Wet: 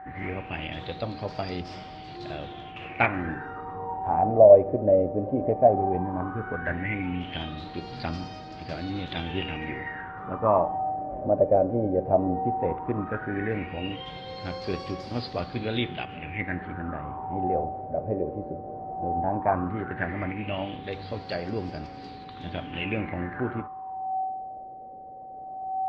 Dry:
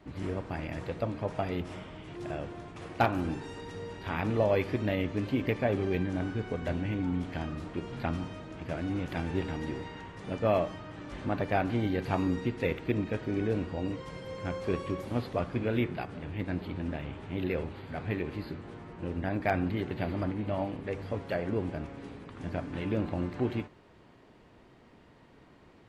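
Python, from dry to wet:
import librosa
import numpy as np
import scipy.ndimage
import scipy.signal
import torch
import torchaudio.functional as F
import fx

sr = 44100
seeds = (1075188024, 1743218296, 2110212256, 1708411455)

y = x + 10.0 ** (-42.0 / 20.0) * np.sin(2.0 * np.pi * 760.0 * np.arange(len(x)) / sr)
y = fx.filter_lfo_lowpass(y, sr, shape='sine', hz=0.15, low_hz=560.0, high_hz=4900.0, q=7.5)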